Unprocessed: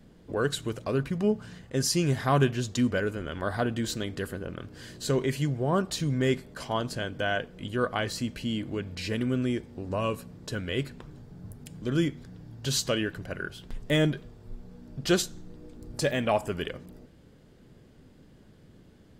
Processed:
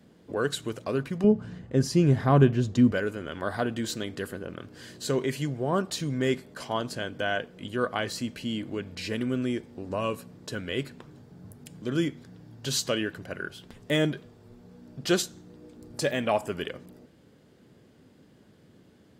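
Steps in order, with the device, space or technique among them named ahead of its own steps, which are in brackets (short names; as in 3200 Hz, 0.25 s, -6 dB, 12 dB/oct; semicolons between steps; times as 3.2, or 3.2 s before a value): HPF 130 Hz 12 dB/oct; low shelf boost with a cut just above (low shelf 62 Hz +6.5 dB; bell 150 Hz -2.5 dB 0.77 oct); 1.24–2.92 tilt -3 dB/oct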